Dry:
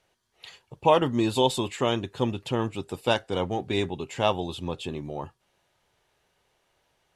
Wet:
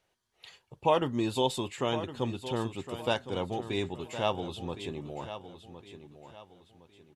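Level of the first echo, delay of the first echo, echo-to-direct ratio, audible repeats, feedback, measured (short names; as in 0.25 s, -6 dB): -12.0 dB, 1.062 s, -11.5 dB, 3, 34%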